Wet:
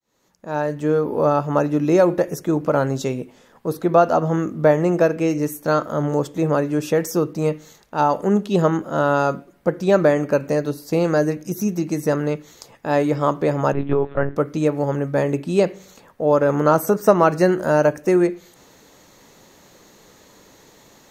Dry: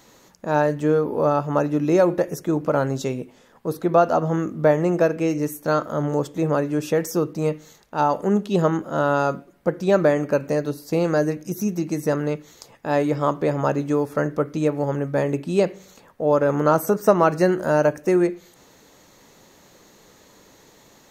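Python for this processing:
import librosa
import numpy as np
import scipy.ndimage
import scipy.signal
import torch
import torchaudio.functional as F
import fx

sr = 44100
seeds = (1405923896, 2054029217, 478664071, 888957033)

y = fx.fade_in_head(x, sr, length_s=1.14)
y = fx.lpc_monotone(y, sr, seeds[0], pitch_hz=140.0, order=10, at=(13.73, 14.36))
y = y * librosa.db_to_amplitude(2.0)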